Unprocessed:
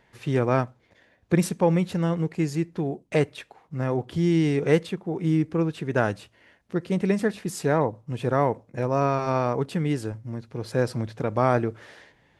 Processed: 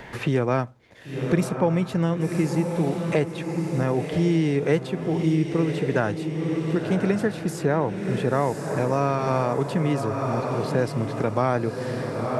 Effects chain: diffused feedback echo 1.061 s, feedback 43%, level -8 dB; three-band squash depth 70%

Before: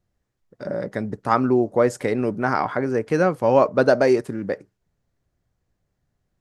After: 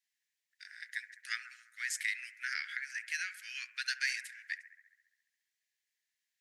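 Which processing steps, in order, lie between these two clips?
steep high-pass 1700 Hz 72 dB/oct; analogue delay 68 ms, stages 1024, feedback 70%, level -14.5 dB

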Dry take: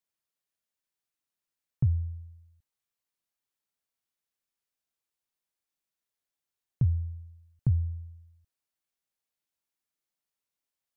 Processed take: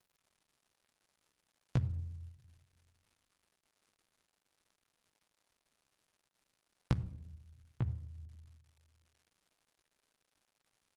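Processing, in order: Doppler pass-by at 2.29, 17 m/s, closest 18 m; recorder AGC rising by 5.2 dB/s; gate -50 dBFS, range -45 dB; HPF 42 Hz 12 dB/oct; low shelf 110 Hz +5.5 dB; compressor 2:1, threshold -41 dBFS, peak gain reduction 15.5 dB; doubler 16 ms -5 dB; shoebox room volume 2800 m³, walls furnished, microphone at 0.71 m; crackle 270/s -60 dBFS; gain +1 dB; Opus 20 kbps 48000 Hz

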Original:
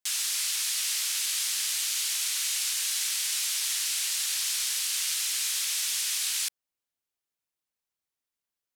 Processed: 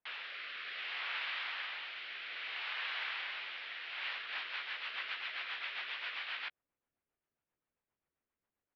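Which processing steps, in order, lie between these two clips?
2.62–3.15 HPF 400 Hz -> 200 Hz 12 dB/oct; rotary speaker horn 0.6 Hz, later 7.5 Hz, at 3.8; Gaussian blur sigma 4 samples; doubler 14 ms -13 dB; gain +8.5 dB

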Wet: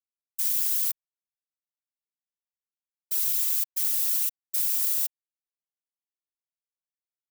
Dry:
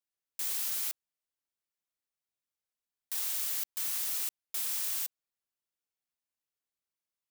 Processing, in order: power-law curve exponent 1.4; whisperiser; tilt +3.5 dB/oct; gain -2 dB

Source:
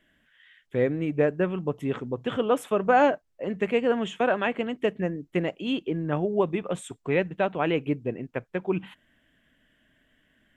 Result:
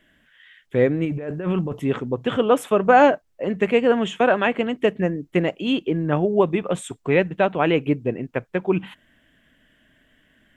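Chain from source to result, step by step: 1.05–1.8 negative-ratio compressor -31 dBFS, ratio -1; gain +6 dB

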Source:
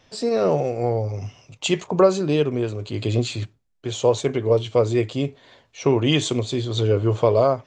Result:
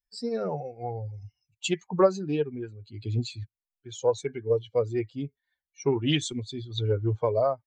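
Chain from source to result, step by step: per-bin expansion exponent 2; Doppler distortion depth 0.11 ms; gain -3 dB

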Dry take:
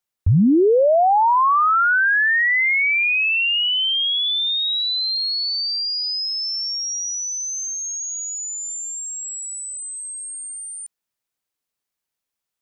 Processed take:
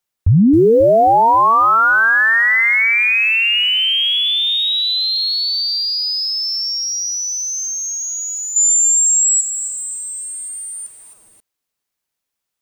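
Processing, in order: 8.56–9.41 resonant high shelf 2300 Hz +11.5 dB, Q 1.5; lo-fi delay 0.269 s, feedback 55%, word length 7-bit, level -11.5 dB; gain +4 dB

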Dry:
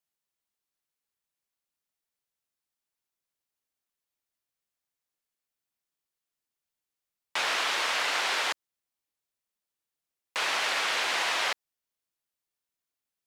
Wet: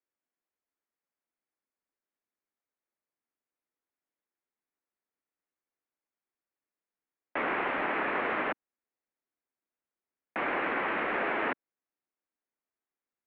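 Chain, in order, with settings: resonant low shelf 470 Hz -6 dB, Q 3; mistuned SSB -300 Hz 220–2600 Hz; gain -1.5 dB

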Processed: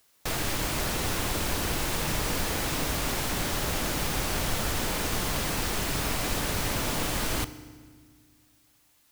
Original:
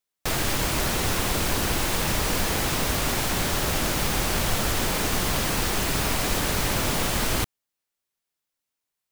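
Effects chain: requantised 10-bit, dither triangular; FDN reverb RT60 1.6 s, low-frequency decay 1.6×, high-frequency decay 0.85×, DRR 13 dB; gain -4.5 dB

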